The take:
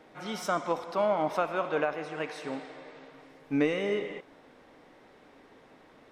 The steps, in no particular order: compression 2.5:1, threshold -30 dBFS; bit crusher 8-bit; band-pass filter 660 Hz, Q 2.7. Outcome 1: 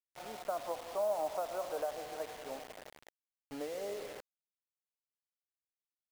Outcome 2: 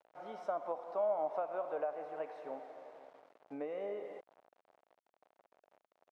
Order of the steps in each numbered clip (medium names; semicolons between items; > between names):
compression > band-pass filter > bit crusher; bit crusher > compression > band-pass filter